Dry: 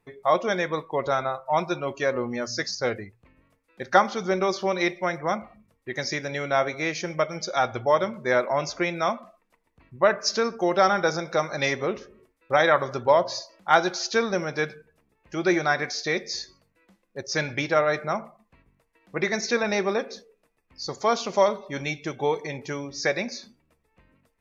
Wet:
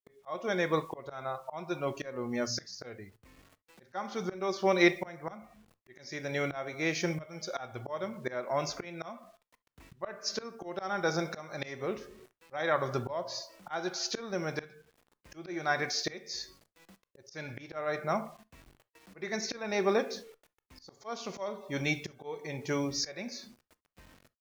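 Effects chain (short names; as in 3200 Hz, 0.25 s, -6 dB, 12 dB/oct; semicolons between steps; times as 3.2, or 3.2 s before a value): bit-crush 10-bit; auto swell 0.707 s; harmonic-percussive split harmonic +4 dB; on a send: reverb, pre-delay 3 ms, DRR 17 dB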